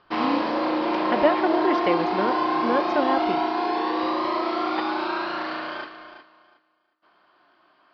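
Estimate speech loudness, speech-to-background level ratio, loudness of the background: -27.0 LUFS, -2.0 dB, -25.0 LUFS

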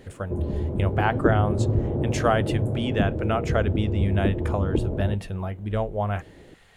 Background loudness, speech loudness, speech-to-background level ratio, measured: -27.0 LUFS, -27.5 LUFS, -0.5 dB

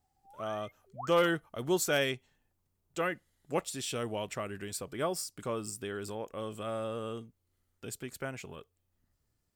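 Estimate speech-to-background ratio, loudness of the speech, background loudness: 15.0 dB, -35.0 LUFS, -50.0 LUFS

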